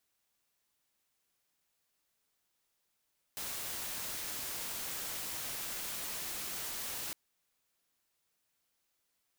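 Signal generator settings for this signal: noise white, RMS -40 dBFS 3.76 s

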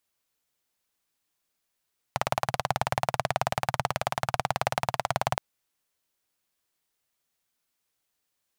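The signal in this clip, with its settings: single-cylinder engine model, steady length 3.22 s, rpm 2200, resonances 130/730 Hz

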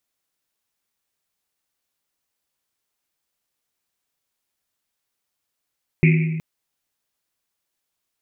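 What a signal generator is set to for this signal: Risset drum length 0.37 s, pitch 160 Hz, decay 1.64 s, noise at 2.3 kHz, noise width 540 Hz, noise 20%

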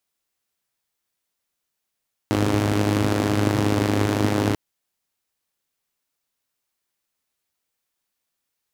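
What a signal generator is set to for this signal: four-cylinder engine model, steady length 2.24 s, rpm 3100, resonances 120/260 Hz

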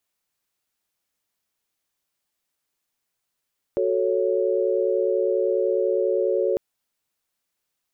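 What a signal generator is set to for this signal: chord F#4/A4/C#5 sine, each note -23.5 dBFS 2.80 s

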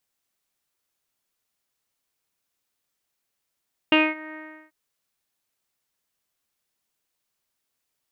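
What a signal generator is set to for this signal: synth note saw D#4 24 dB/octave, low-pass 2 kHz, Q 8.2, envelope 0.5 oct, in 0.27 s, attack 2 ms, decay 0.22 s, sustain -22.5 dB, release 0.37 s, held 0.42 s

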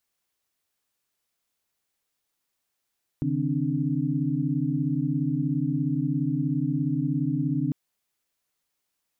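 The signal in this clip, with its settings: chord C#3/D#3/C4/D4 sine, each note -28.5 dBFS 4.50 s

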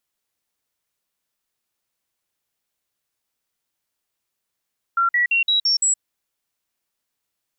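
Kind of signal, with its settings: stepped sine 1.37 kHz up, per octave 2, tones 6, 0.12 s, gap 0.05 s -15 dBFS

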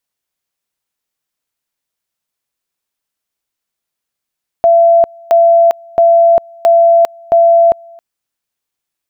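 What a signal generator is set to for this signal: two-level tone 675 Hz -4 dBFS, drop 29 dB, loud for 0.40 s, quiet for 0.27 s, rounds 5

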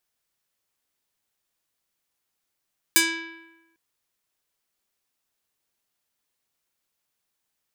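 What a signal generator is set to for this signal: plucked string E4, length 0.80 s, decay 1.08 s, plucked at 0.49, medium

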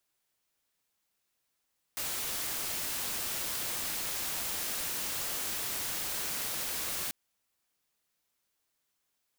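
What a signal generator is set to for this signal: noise white, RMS -35 dBFS 5.14 s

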